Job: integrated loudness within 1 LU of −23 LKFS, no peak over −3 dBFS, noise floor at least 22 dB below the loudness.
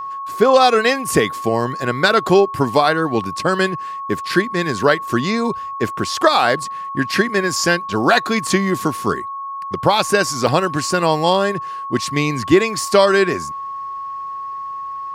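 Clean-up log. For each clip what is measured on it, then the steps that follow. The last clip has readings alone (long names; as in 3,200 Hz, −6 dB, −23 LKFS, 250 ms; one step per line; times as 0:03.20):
number of dropouts 3; longest dropout 2.1 ms; interfering tone 1,100 Hz; level of the tone −25 dBFS; integrated loudness −17.5 LKFS; sample peak −1.0 dBFS; target loudness −23.0 LKFS
→ repair the gap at 0:03.24/0:08.47/0:10.47, 2.1 ms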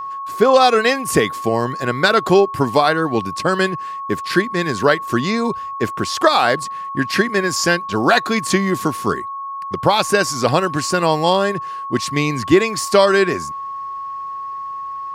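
number of dropouts 0; interfering tone 1,100 Hz; level of the tone −25 dBFS
→ notch filter 1,100 Hz, Q 30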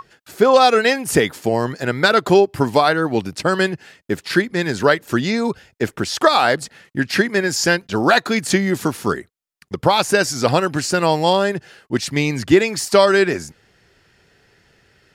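interfering tone none found; integrated loudness −17.5 LKFS; sample peak −1.5 dBFS; target loudness −23.0 LKFS
→ level −5.5 dB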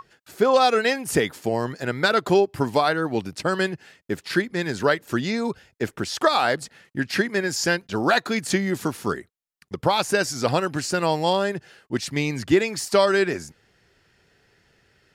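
integrated loudness −23.0 LKFS; sample peak −7.0 dBFS; background noise floor −67 dBFS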